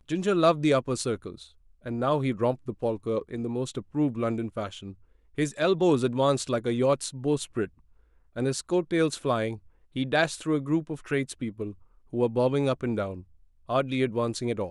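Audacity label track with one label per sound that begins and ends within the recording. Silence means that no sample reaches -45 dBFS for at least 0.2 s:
1.850000	4.940000	sound
5.380000	7.680000	sound
8.360000	9.580000	sound
9.960000	11.740000	sound
12.130000	13.230000	sound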